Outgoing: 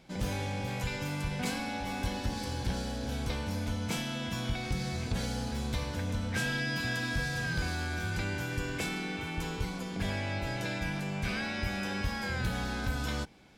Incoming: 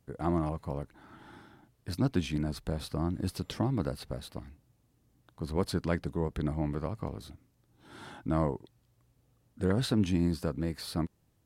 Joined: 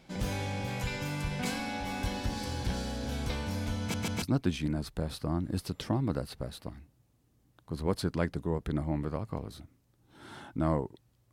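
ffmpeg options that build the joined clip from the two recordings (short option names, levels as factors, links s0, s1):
-filter_complex "[0:a]apad=whole_dur=11.32,atrim=end=11.32,asplit=3[s0][s1][s2];[s0]atrim=end=3.942[s3];[s1]atrim=start=3.798:end=3.942[s4];[s2]atrim=start=3.798:end=3.942[s5];[1:a]atrim=start=1.918:end=9.02[s6];[s3][s4]acrossfade=d=0.004:c1=hsin:c2=hsin[s7];[s7][s5]acrossfade=d=0.004:c1=hsin:c2=hsin[s8];[s8][s6]acrossfade=d=0.004:c1=hsin:c2=hsin"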